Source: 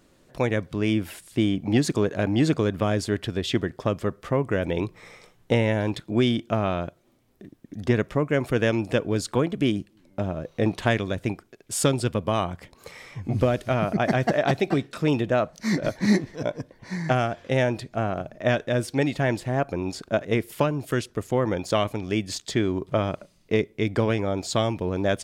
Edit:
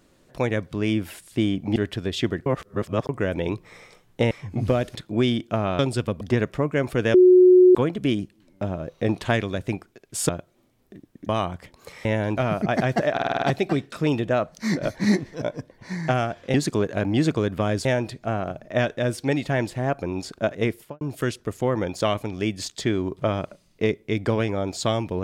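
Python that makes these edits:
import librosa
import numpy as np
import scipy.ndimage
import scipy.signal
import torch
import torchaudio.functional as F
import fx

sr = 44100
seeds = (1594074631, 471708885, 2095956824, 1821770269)

y = fx.studio_fade_out(x, sr, start_s=20.39, length_s=0.32)
y = fx.edit(y, sr, fx.move(start_s=1.76, length_s=1.31, to_s=17.55),
    fx.reverse_span(start_s=3.77, length_s=0.63),
    fx.swap(start_s=5.62, length_s=0.32, other_s=13.04, other_length_s=0.64),
    fx.swap(start_s=6.78, length_s=1.0, other_s=11.86, other_length_s=0.42),
    fx.bleep(start_s=8.71, length_s=0.61, hz=365.0, db=-9.0),
    fx.stutter(start_s=14.43, slice_s=0.05, count=7), tone=tone)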